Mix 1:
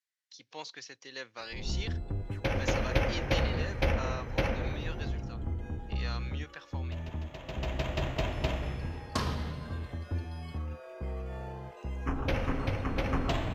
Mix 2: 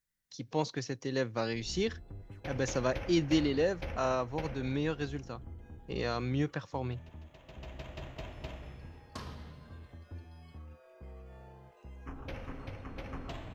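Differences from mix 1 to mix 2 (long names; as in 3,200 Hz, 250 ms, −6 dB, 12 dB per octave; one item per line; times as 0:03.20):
speech: remove resonant band-pass 3,200 Hz, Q 0.71
background −12.0 dB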